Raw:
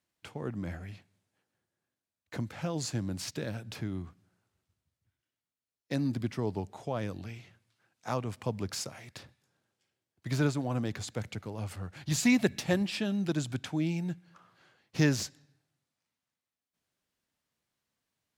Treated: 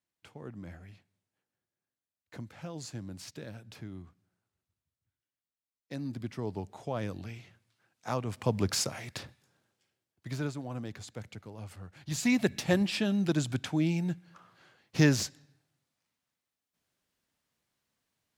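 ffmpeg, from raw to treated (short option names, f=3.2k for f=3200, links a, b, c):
-af "volume=15.5dB,afade=t=in:st=5.96:d=1.09:silence=0.421697,afade=t=in:st=8.24:d=0.4:silence=0.473151,afade=t=out:st=9.2:d=1.19:silence=0.223872,afade=t=in:st=12.01:d=0.82:silence=0.354813"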